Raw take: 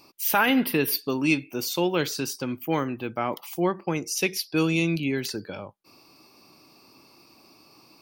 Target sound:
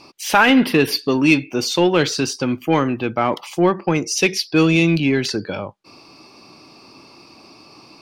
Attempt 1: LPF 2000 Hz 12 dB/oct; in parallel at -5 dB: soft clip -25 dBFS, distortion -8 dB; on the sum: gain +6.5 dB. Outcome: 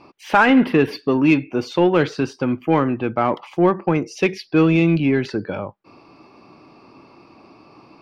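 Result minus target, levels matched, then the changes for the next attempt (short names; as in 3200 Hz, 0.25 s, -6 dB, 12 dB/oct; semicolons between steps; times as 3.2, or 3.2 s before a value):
8000 Hz band -16.0 dB
change: LPF 6300 Hz 12 dB/oct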